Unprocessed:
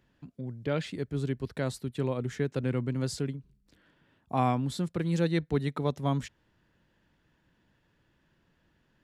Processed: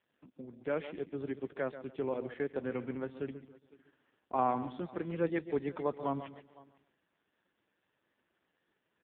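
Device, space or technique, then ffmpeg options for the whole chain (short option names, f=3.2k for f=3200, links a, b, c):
satellite phone: -filter_complex "[0:a]asplit=3[a][b][c];[a]afade=t=out:st=2.72:d=0.02[d];[b]highshelf=f=4.8k:g=5,afade=t=in:st=2.72:d=0.02,afade=t=out:st=3.24:d=0.02[e];[c]afade=t=in:st=3.24:d=0.02[f];[d][e][f]amix=inputs=3:normalize=0,highpass=310,lowpass=3.1k,aecho=1:1:137|274|411:0.251|0.0703|0.0197,aecho=1:1:507:0.075,volume=-1dB" -ar 8000 -c:a libopencore_amrnb -b:a 4750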